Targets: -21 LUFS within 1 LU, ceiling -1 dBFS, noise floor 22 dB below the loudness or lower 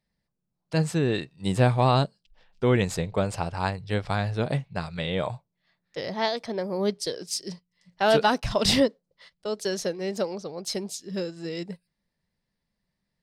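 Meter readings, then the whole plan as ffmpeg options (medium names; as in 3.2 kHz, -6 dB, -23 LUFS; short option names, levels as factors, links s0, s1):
loudness -27.0 LUFS; peak level -10.5 dBFS; loudness target -21.0 LUFS
-> -af "volume=2"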